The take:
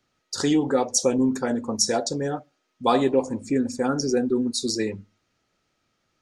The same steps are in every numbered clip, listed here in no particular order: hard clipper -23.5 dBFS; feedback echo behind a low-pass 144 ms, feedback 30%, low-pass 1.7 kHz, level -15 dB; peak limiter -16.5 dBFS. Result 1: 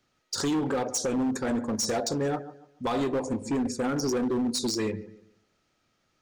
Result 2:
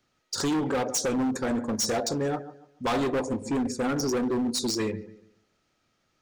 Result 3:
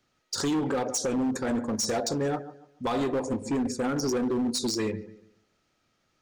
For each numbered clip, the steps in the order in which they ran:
peak limiter > feedback echo behind a low-pass > hard clipper; feedback echo behind a low-pass > hard clipper > peak limiter; feedback echo behind a low-pass > peak limiter > hard clipper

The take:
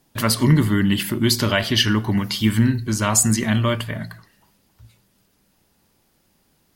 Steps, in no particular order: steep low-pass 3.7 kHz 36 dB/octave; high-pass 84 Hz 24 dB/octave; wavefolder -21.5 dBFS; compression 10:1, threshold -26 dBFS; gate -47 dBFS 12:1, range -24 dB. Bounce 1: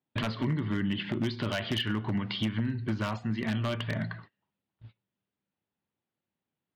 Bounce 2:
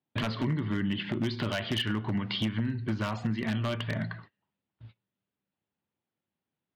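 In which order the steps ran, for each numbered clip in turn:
compression > high-pass > gate > steep low-pass > wavefolder; steep low-pass > gate > compression > high-pass > wavefolder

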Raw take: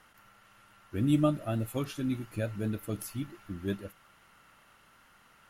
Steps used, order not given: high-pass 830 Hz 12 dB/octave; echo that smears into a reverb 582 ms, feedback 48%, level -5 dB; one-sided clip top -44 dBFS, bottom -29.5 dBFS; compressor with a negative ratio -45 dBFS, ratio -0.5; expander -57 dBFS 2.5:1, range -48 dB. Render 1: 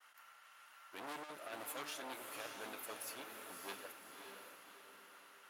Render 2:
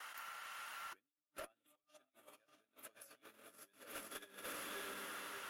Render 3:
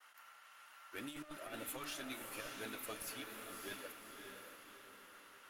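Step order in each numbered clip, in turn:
one-sided clip > high-pass > compressor with a negative ratio > expander > echo that smears into a reverb; echo that smears into a reverb > compressor with a negative ratio > expander > high-pass > one-sided clip; expander > high-pass > one-sided clip > compressor with a negative ratio > echo that smears into a reverb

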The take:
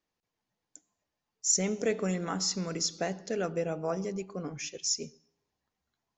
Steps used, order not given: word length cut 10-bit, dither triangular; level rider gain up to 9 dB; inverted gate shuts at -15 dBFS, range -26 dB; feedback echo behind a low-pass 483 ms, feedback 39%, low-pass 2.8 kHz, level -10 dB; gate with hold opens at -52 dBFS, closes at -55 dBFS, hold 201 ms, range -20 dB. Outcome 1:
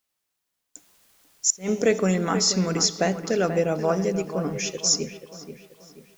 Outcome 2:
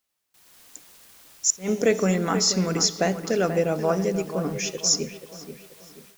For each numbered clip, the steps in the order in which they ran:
inverted gate > level rider > feedback echo behind a low-pass > word length cut > gate with hold; feedback echo behind a low-pass > inverted gate > word length cut > level rider > gate with hold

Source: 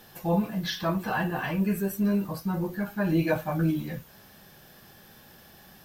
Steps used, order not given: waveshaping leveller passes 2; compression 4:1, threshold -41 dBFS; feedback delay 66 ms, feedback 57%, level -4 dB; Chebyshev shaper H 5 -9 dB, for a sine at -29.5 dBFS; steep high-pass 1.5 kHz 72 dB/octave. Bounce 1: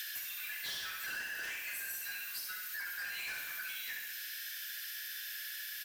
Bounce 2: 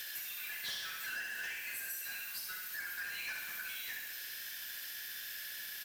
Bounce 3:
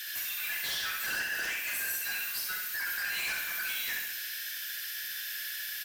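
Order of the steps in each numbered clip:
steep high-pass > Chebyshev shaper > waveshaping leveller > feedback delay > compression; steep high-pass > waveshaping leveller > Chebyshev shaper > feedback delay > compression; steep high-pass > compression > waveshaping leveller > Chebyshev shaper > feedback delay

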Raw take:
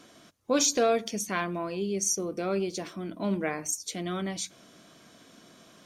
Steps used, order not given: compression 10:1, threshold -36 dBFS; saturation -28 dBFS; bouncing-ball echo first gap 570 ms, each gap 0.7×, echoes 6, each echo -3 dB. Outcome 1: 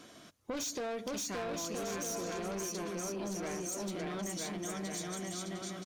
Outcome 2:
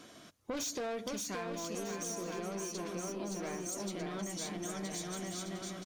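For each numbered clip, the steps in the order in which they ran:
bouncing-ball echo > saturation > compression; saturation > bouncing-ball echo > compression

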